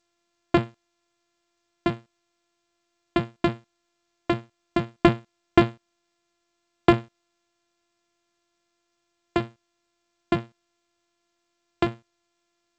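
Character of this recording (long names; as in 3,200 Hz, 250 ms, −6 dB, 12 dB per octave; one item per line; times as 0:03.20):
a buzz of ramps at a fixed pitch in blocks of 128 samples
G.722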